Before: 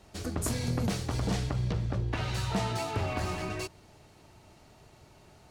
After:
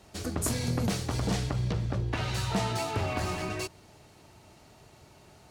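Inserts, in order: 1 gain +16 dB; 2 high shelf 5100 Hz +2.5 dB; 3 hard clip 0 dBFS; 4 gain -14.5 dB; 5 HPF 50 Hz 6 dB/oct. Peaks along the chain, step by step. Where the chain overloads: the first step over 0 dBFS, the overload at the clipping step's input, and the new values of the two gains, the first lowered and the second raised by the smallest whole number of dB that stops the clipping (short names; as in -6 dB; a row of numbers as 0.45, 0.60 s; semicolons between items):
-2.5, -2.0, -2.0, -16.5, -17.0 dBFS; no overload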